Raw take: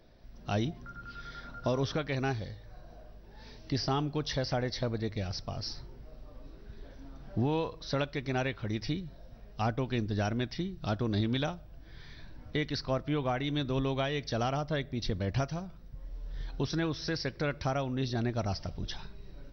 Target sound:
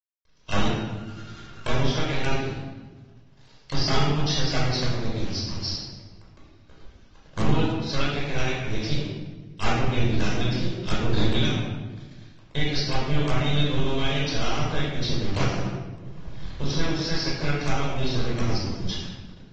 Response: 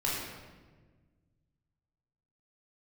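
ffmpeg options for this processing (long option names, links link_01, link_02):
-filter_complex "[0:a]equalizer=frequency=200:width_type=o:width=0.33:gain=4,equalizer=frequency=500:width_type=o:width=0.33:gain=-6,equalizer=frequency=800:width_type=o:width=0.33:gain=3,equalizer=frequency=2000:width_type=o:width=0.33:gain=-6,acrossover=split=1600[link_01][link_02];[link_01]acrusher=bits=5:dc=4:mix=0:aa=0.000001[link_03];[link_02]acontrast=65[link_04];[link_03][link_04]amix=inputs=2:normalize=0,aeval=exprs='sgn(val(0))*max(abs(val(0))-0.0075,0)':channel_layout=same[link_05];[1:a]atrim=start_sample=2205,asetrate=48510,aresample=44100[link_06];[link_05][link_06]afir=irnorm=-1:irlink=0" -ar 48000 -c:a aac -b:a 24k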